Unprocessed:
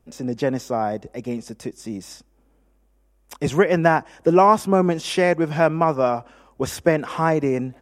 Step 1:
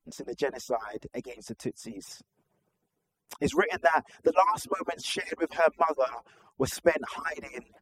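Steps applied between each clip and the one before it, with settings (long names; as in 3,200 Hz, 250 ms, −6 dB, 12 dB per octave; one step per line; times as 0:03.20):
harmonic-percussive split with one part muted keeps percussive
level −3.5 dB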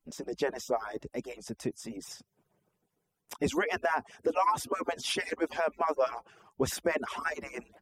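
brickwall limiter −18 dBFS, peak gain reduction 9.5 dB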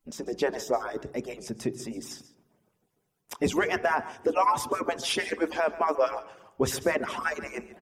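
single-tap delay 140 ms −16.5 dB
on a send at −17 dB: convolution reverb RT60 1.0 s, pre-delay 3 ms
on the sum: level +3.5 dB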